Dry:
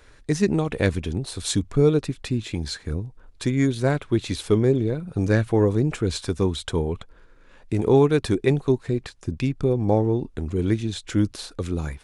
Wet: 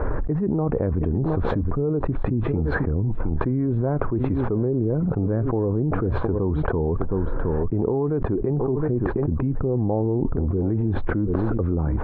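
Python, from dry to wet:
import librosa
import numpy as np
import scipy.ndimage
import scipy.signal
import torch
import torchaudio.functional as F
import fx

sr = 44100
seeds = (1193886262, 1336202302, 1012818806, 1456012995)

p1 = scipy.signal.sosfilt(scipy.signal.butter(4, 1100.0, 'lowpass', fs=sr, output='sos'), x)
p2 = p1 + fx.echo_single(p1, sr, ms=716, db=-20.0, dry=0)
p3 = fx.env_flatten(p2, sr, amount_pct=100)
y = p3 * librosa.db_to_amplitude(-8.5)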